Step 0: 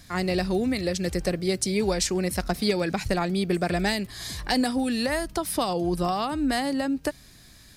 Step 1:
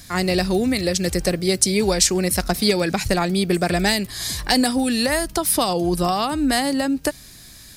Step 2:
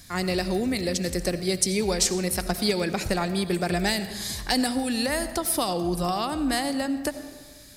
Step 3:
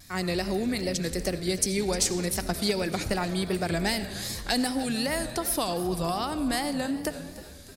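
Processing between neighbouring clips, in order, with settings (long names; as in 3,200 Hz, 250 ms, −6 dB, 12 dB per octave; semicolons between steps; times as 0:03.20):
high-shelf EQ 4,900 Hz +8 dB; level +5 dB
comb and all-pass reverb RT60 1.5 s, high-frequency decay 0.55×, pre-delay 45 ms, DRR 11 dB; level −6 dB
echo with shifted repeats 306 ms, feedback 58%, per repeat −100 Hz, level −15.5 dB; pitch vibrato 2.6 Hz 79 cents; level −2.5 dB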